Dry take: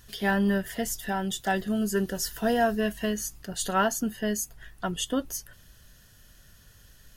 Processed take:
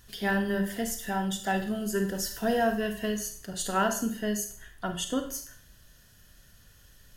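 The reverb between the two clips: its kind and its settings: Schroeder reverb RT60 0.49 s, combs from 31 ms, DRR 6 dB; trim -2.5 dB

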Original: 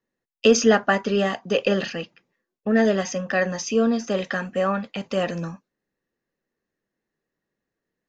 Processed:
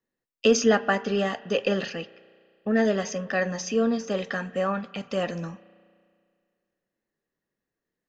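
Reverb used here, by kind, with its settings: spring tank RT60 2.1 s, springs 33 ms, chirp 25 ms, DRR 17.5 dB; trim -3.5 dB

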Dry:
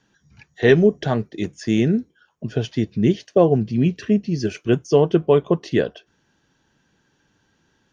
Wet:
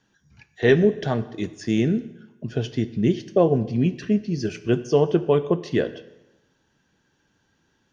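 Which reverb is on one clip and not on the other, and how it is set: plate-style reverb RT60 0.99 s, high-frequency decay 0.9×, DRR 13 dB; trim -3 dB

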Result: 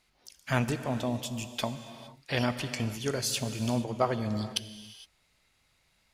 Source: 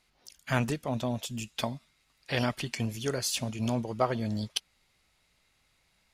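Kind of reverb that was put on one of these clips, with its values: gated-style reverb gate 490 ms flat, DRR 10 dB

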